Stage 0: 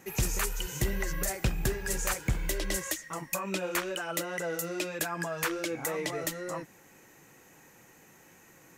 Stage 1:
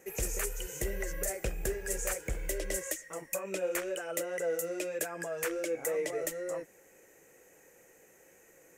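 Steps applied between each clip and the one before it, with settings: graphic EQ 125/250/500/1000/2000/4000/8000 Hz -9/-6/+11/-9/+3/-9/+5 dB; gain -4 dB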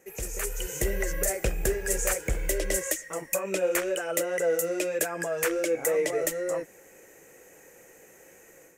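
AGC gain up to 9 dB; gain -2 dB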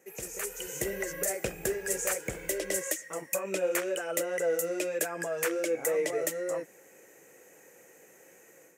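HPF 130 Hz 12 dB/oct; gain -3 dB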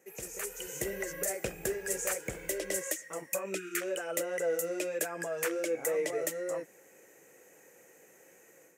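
spectral delete 3.55–3.81, 460–1200 Hz; gain -2.5 dB

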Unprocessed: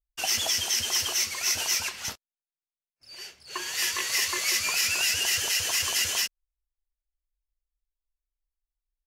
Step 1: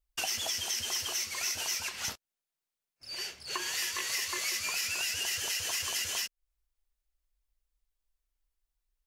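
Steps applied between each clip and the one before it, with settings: compressor 4:1, threshold -38 dBFS, peak gain reduction 13.5 dB; gain +5 dB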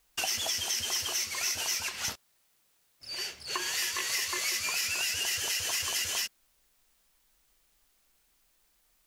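requantised 12-bit, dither triangular; gain +2 dB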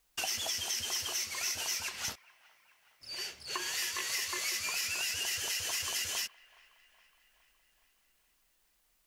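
band-limited delay 0.417 s, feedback 60%, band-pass 1300 Hz, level -21 dB; gain -3.5 dB

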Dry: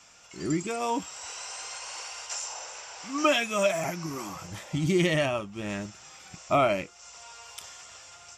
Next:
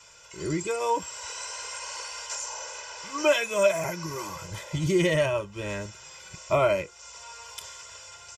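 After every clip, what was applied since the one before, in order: comb 2 ms, depth 93%; dynamic EQ 3400 Hz, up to -4 dB, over -38 dBFS, Q 0.88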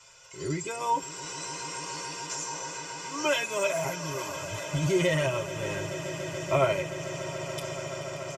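comb 7.5 ms, depth 58%; on a send: swelling echo 0.144 s, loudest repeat 8, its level -17 dB; on the sum: gain -3 dB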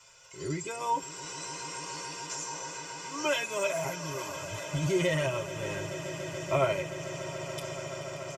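crackle 200/s -57 dBFS; gain -2.5 dB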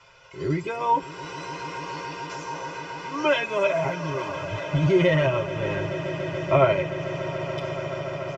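air absorption 260 m; gain +9 dB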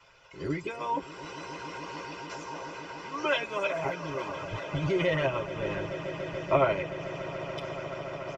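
harmonic-percussive split harmonic -10 dB

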